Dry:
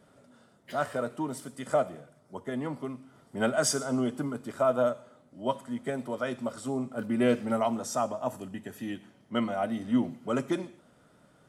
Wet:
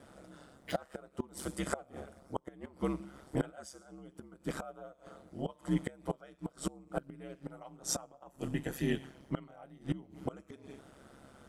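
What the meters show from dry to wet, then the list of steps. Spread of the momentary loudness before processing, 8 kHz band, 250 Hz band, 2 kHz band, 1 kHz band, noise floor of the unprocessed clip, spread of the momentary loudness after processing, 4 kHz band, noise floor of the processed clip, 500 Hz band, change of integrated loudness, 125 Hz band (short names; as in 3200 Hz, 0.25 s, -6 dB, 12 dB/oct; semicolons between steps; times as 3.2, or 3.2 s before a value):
14 LU, -6.5 dB, -8.5 dB, -9.0 dB, -12.0 dB, -62 dBFS, 18 LU, -7.0 dB, -65 dBFS, -12.0 dB, -9.0 dB, -1.5 dB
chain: flipped gate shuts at -25 dBFS, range -27 dB; ring modulator 68 Hz; gain +7 dB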